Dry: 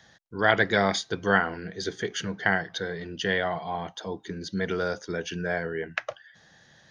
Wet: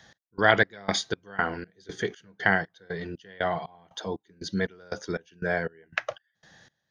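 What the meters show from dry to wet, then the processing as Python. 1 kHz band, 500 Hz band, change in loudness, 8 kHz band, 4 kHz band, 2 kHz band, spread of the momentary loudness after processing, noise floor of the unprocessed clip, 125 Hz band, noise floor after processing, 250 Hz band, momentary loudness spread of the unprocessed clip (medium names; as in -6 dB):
-1.0 dB, -1.5 dB, -1.0 dB, -1.5 dB, -2.0 dB, -0.5 dB, 15 LU, -59 dBFS, -1.5 dB, -80 dBFS, -2.5 dB, 12 LU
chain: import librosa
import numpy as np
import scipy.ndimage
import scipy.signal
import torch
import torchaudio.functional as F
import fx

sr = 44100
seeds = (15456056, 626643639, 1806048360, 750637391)

y = fx.step_gate(x, sr, bpm=119, pattern='x..xx..x', floor_db=-24.0, edge_ms=4.5)
y = F.gain(torch.from_numpy(y), 1.5).numpy()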